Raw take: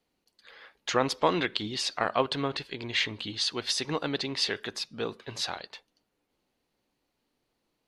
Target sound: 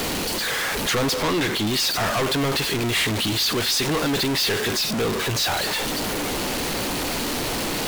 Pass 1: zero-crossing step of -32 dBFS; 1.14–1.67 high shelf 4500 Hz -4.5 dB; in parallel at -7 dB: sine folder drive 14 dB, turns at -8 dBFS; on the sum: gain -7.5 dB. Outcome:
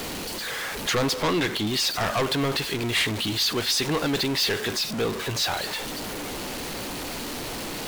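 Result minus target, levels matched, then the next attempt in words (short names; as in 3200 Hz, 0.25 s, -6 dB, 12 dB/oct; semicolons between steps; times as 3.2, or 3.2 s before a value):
zero-crossing step: distortion -5 dB
zero-crossing step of -24.5 dBFS; 1.14–1.67 high shelf 4500 Hz -4.5 dB; in parallel at -7 dB: sine folder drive 14 dB, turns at -8 dBFS; on the sum: gain -7.5 dB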